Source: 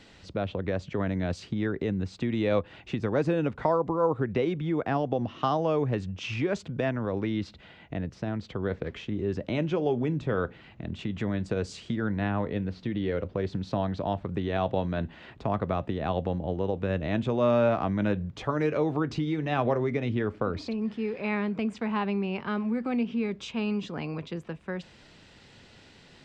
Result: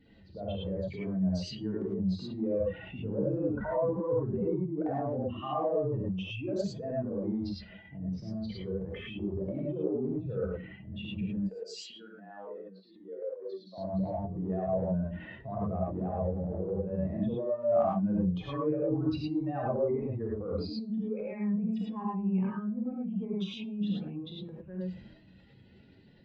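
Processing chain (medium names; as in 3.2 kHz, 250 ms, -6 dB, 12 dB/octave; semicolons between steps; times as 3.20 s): spectral contrast enhancement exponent 2.4; 11.37–13.78 s: high-pass 470 Hz 24 dB/octave; transient shaper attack -4 dB, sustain +9 dB; flange 0.12 Hz, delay 8.5 ms, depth 1.2 ms, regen -83%; gated-style reverb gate 130 ms rising, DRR -4.5 dB; trim -5.5 dB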